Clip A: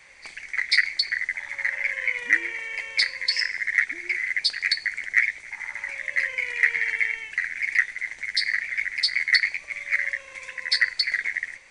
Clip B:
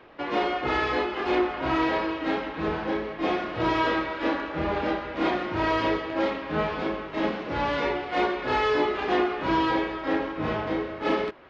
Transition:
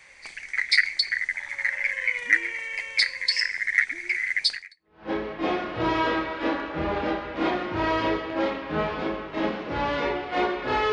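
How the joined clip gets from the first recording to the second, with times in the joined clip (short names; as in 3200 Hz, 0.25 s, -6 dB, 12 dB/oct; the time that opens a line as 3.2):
clip A
4.83 switch to clip B from 2.63 s, crossfade 0.56 s exponential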